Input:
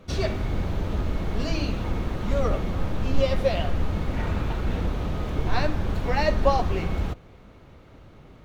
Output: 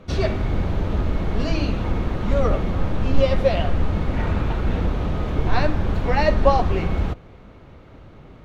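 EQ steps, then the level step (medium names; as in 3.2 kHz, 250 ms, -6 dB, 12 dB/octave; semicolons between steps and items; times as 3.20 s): low-pass 3.6 kHz 6 dB/octave; +4.5 dB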